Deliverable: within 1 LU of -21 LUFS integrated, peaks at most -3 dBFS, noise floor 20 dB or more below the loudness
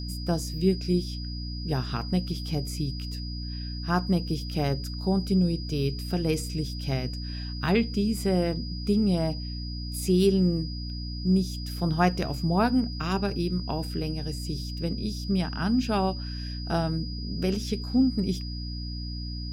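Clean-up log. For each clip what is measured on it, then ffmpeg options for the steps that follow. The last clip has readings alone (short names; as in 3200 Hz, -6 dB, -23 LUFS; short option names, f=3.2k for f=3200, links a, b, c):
hum 60 Hz; harmonics up to 300 Hz; hum level -32 dBFS; steady tone 4900 Hz; tone level -40 dBFS; loudness -28.0 LUFS; peak -7.0 dBFS; loudness target -21.0 LUFS
-> -af "bandreject=f=60:t=h:w=6,bandreject=f=120:t=h:w=6,bandreject=f=180:t=h:w=6,bandreject=f=240:t=h:w=6,bandreject=f=300:t=h:w=6"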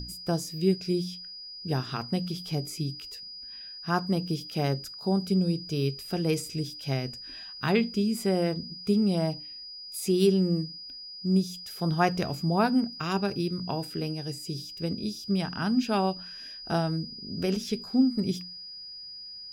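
hum none; steady tone 4900 Hz; tone level -40 dBFS
-> -af "bandreject=f=4.9k:w=30"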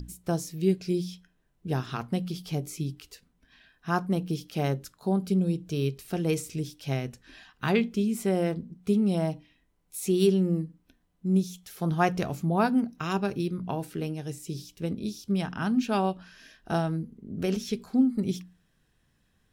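steady tone none; loudness -29.0 LUFS; peak -9.0 dBFS; loudness target -21.0 LUFS
-> -af "volume=8dB,alimiter=limit=-3dB:level=0:latency=1"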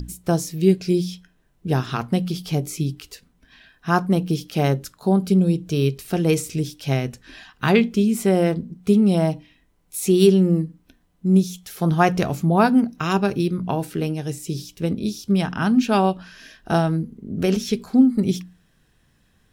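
loudness -21.0 LUFS; peak -3.0 dBFS; noise floor -62 dBFS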